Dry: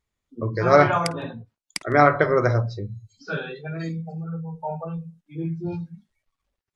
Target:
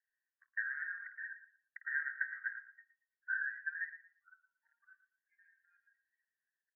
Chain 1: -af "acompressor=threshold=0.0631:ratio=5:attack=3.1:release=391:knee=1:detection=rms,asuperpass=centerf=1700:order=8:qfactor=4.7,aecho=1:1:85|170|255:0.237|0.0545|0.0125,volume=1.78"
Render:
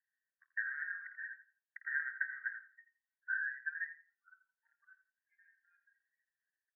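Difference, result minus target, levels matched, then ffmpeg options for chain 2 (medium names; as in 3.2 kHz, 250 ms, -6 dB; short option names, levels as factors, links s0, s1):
echo 31 ms early
-af "acompressor=threshold=0.0631:ratio=5:attack=3.1:release=391:knee=1:detection=rms,asuperpass=centerf=1700:order=8:qfactor=4.7,aecho=1:1:116|232|348:0.237|0.0545|0.0125,volume=1.78"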